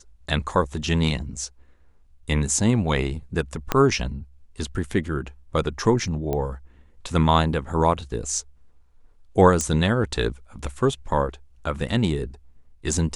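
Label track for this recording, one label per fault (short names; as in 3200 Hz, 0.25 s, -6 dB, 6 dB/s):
3.720000	3.720000	pop -6 dBFS
6.330000	6.330000	pop -14 dBFS
9.610000	9.610000	pop -11 dBFS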